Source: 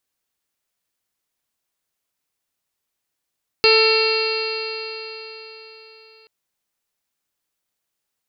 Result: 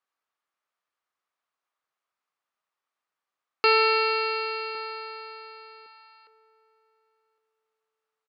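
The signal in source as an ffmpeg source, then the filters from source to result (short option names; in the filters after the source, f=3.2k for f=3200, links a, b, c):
-f lavfi -i "aevalsrc='0.2*pow(10,-3*t/4.09)*sin(2*PI*440.37*t)+0.0501*pow(10,-3*t/4.09)*sin(2*PI*882.99*t)+0.0708*pow(10,-3*t/4.09)*sin(2*PI*1330.06*t)+0.0299*pow(10,-3*t/4.09)*sin(2*PI*1783.78*t)+0.0668*pow(10,-3*t/4.09)*sin(2*PI*2246.26*t)+0.15*pow(10,-3*t/4.09)*sin(2*PI*2719.58*t)+0.0251*pow(10,-3*t/4.09)*sin(2*PI*3205.72*t)+0.0251*pow(10,-3*t/4.09)*sin(2*PI*3706.54*t)+0.158*pow(10,-3*t/4.09)*sin(2*PI*4223.86*t)+0.112*pow(10,-3*t/4.09)*sin(2*PI*4759.33*t)':d=2.63:s=44100"
-filter_complex "[0:a]bandpass=f=1.1k:t=q:w=0.83:csg=0,equalizer=f=1.2k:t=o:w=0.25:g=7,asplit=2[a][b];[b]adelay=1111,lowpass=f=1k:p=1,volume=-18.5dB,asplit=2[c][d];[d]adelay=1111,lowpass=f=1k:p=1,volume=0.2[e];[a][c][e]amix=inputs=3:normalize=0"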